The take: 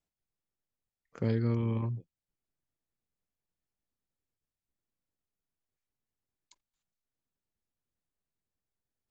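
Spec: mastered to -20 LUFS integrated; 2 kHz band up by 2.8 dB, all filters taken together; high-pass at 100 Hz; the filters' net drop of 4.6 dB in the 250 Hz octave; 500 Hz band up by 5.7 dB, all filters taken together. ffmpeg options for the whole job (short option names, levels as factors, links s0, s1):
-af "highpass=100,equalizer=f=250:t=o:g=-8,equalizer=f=500:t=o:g=9,equalizer=f=2000:t=o:g=3,volume=4.47"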